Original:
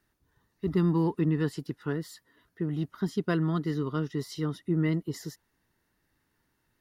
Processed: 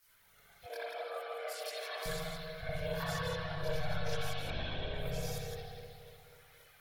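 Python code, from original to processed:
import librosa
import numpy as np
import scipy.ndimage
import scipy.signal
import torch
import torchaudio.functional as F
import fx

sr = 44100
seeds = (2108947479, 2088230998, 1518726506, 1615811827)

y = fx.tilt_eq(x, sr, slope=4.5)
y = y + 0.45 * np.pad(y, (int(7.0 * sr / 1000.0), 0))[:len(y)]
y = fx.over_compress(y, sr, threshold_db=-41.0, ratio=-1.0)
y = y * np.sin(2.0 * np.pi * 310.0 * np.arange(len(y)) / sr)
y = fx.lpc_vocoder(y, sr, seeds[0], excitation='whisper', order=10, at=(4.31, 4.94))
y = y + 10.0 ** (-6.5 / 20.0) * np.pad(y, (int(168 * sr / 1000.0), 0))[:len(y)]
y = fx.rev_spring(y, sr, rt60_s=2.5, pass_ms=(60,), chirp_ms=25, drr_db=-9.0)
y = fx.chorus_voices(y, sr, voices=6, hz=0.63, base_ms=23, depth_ms=1.4, mix_pct=60)
y = fx.brickwall_highpass(y, sr, low_hz=260.0, at=(0.66, 2.06))
y = F.gain(torch.from_numpy(y), -1.5).numpy()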